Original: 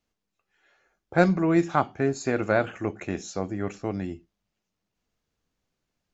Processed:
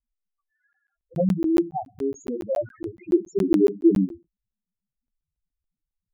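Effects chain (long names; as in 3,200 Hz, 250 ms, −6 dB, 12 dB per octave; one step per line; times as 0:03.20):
0:03.12–0:04.05: low shelf with overshoot 510 Hz +10.5 dB, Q 3
spectral peaks only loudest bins 2
regular buffer underruns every 0.14 s, samples 512, zero, from 0:00.73
level +3 dB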